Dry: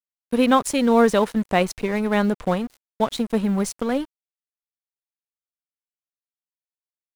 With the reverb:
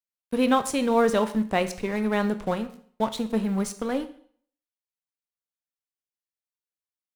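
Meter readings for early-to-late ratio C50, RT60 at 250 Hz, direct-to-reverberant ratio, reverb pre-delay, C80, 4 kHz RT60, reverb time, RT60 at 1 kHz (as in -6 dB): 13.5 dB, 0.50 s, 9.5 dB, 7 ms, 17.0 dB, 0.50 s, 0.55 s, 0.55 s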